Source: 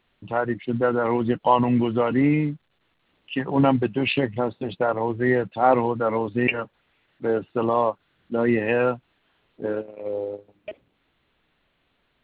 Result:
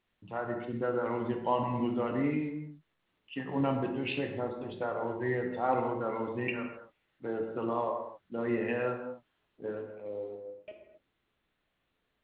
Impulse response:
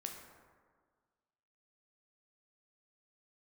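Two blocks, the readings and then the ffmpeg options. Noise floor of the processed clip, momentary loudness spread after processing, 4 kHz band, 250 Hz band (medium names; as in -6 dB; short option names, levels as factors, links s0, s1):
-80 dBFS, 13 LU, -11.5 dB, -10.5 dB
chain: -filter_complex "[1:a]atrim=start_sample=2205,afade=t=out:st=0.31:d=0.01,atrim=end_sample=14112,asetrate=43218,aresample=44100[s0];[0:a][s0]afir=irnorm=-1:irlink=0,volume=0.398"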